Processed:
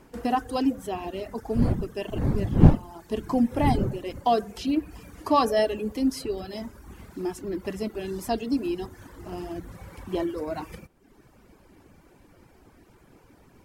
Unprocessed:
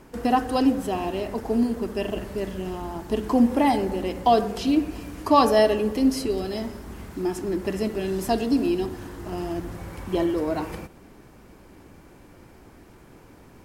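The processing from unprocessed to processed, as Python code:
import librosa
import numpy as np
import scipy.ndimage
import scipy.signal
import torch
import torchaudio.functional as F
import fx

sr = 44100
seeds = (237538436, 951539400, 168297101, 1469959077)

y = fx.dmg_wind(x, sr, seeds[0], corner_hz=190.0, level_db=-20.0, at=(1.54, 4.28), fade=0.02)
y = fx.dereverb_blind(y, sr, rt60_s=0.87)
y = F.gain(torch.from_numpy(y), -3.5).numpy()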